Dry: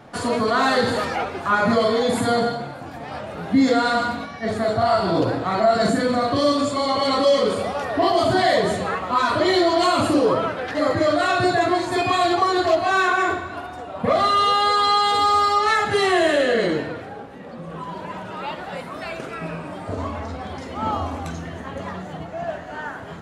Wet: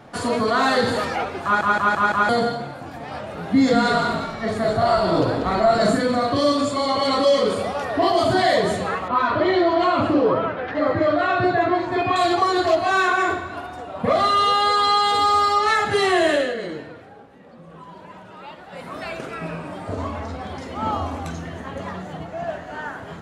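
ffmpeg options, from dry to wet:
-filter_complex "[0:a]asettb=1/sr,asplit=3[a][b][c];[a]atrim=end=3.364[d];[b]atrim=start=3.36:end=5.97,asetpts=PTS-STARTPTS,afade=t=in:d=0.004:c=qsin,afade=t=out:st=2.606:d=0.004:c=qsin,asplit=5[e][f][g][h][i];[f]adelay=190,afreqshift=-53,volume=-8dB[j];[g]adelay=380,afreqshift=-106,volume=-17.4dB[k];[h]adelay=570,afreqshift=-159,volume=-26.7dB[l];[i]adelay=760,afreqshift=-212,volume=-36.1dB[m];[e][j][k][l][m]amix=inputs=5:normalize=0,atrim=end_sample=115101[n];[c]atrim=start=5.966[o];[d][n]acrossfade=d=0.004:c1=hsin:c2=qsin[p];[p][o]acrossfade=d=0.004:c1=qsin:c2=hsin,asettb=1/sr,asplit=3[q][r][s];[q]atrim=end=9.084[t];[r]atrim=start=9.08:end=12.16,asetpts=PTS-STARTPTS,afade=t=in:d=0.004:c=qsin,afade=t=out:st=3.076:d=0.004:c=qsin,lowpass=2.6k[u];[s]atrim=start=12.156[v];[t][u]acrossfade=d=0.004:c1=hsin:c2=qsin[w];[w][v]acrossfade=d=0.004:c1=qsin:c2=hsin,asplit=8[x][y][z][aa][ab][ac][ad][ae];[x]atrim=end=1.612[af];[y]atrim=start=1.438:end=1.612[ag];[z]atrim=start=1.438:end=1.612[ah];[aa]atrim=start=1.438:end=1.612[ai];[ab]atrim=start=1.438:end=1.612[aj];[ac]atrim=start=2.288:end=16.55,asetpts=PTS-STARTPTS,afade=t=out:st=14.052:d=0.21:silence=0.354813[ak];[ad]atrim=start=16.55:end=18.7,asetpts=PTS-STARTPTS,volume=-9dB[al];[ae]atrim=start=18.7,asetpts=PTS-STARTPTS,afade=t=in:d=0.21:silence=0.354813[am];[af][ag]acrossfade=d=0.004:c1=hsin:c2=hsin[an];[an][ah]acrossfade=d=0.004:c1=hsin:c2=hsin[ao];[ao][ai]acrossfade=d=0.004:c1=hsin:c2=hsin[ap];[ap][aj]acrossfade=d=0.004:c1=hsin:c2=hsin[aq];[ak][al][am]concat=n=3:v=0:a=1[ar];[aq][ar]acrossfade=d=0.004:c1=hsin:c2=hsin"

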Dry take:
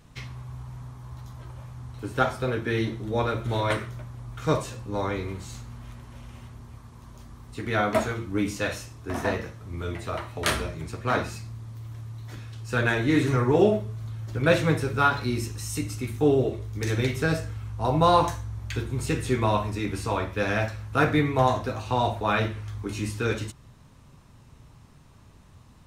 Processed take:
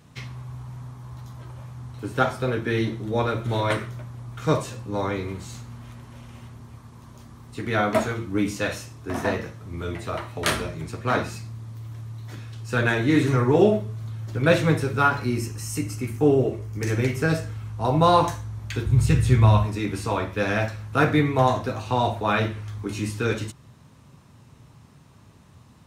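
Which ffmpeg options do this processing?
-filter_complex "[0:a]asettb=1/sr,asplit=3[a][b][c];[a]atrim=end=15.024[d];[b]atrim=start=15.02:end=17.3,asetpts=PTS-STARTPTS,afade=t=in:d=0.004:c=qsin,afade=t=out:st=2.276:d=0.004:c=qsin,equalizer=f=3.7k:t=o:w=0.26:g=-12[e];[c]atrim=start=17.296[f];[d][e]acrossfade=d=0.004:c1=hsin:c2=qsin[g];[g][f]acrossfade=d=0.004:c1=qsin:c2=hsin,asplit=3[h][i][j];[h]afade=t=out:st=18.85:d=0.02[k];[i]asubboost=boost=7.5:cutoff=110,afade=t=in:st=18.85:d=0.02,afade=t=out:st=19.64:d=0.02[l];[j]afade=t=in:st=19.64:d=0.02[m];[k][l][m]amix=inputs=3:normalize=0,highpass=110,lowshelf=f=160:g=5,volume=1.5dB"

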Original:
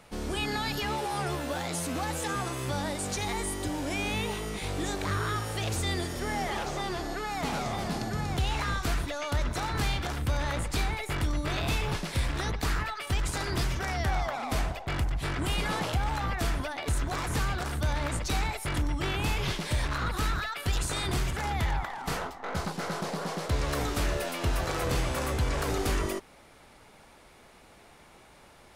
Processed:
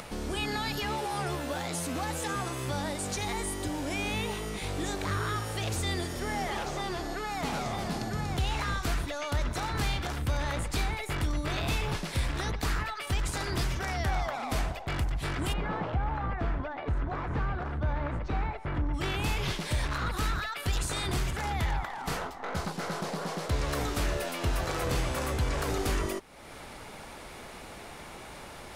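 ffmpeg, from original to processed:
-filter_complex "[0:a]asplit=3[a][b][c];[a]afade=t=out:st=15.52:d=0.02[d];[b]lowpass=1.6k,afade=t=in:st=15.52:d=0.02,afade=t=out:st=18.93:d=0.02[e];[c]afade=t=in:st=18.93:d=0.02[f];[d][e][f]amix=inputs=3:normalize=0,acompressor=mode=upward:threshold=-32dB:ratio=2.5,volume=-1dB"

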